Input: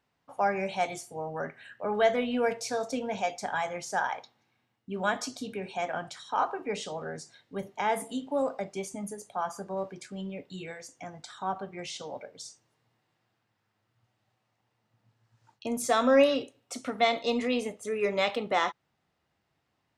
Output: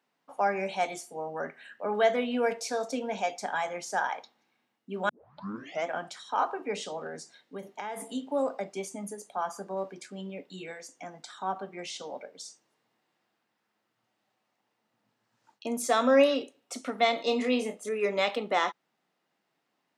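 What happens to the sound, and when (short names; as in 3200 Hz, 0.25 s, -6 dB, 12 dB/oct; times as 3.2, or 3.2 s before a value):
5.09 tape start 0.78 s
7.06–8.15 compressor, threshold -33 dBFS
17.16–17.89 doubler 28 ms -7 dB
whole clip: HPF 190 Hz 24 dB/oct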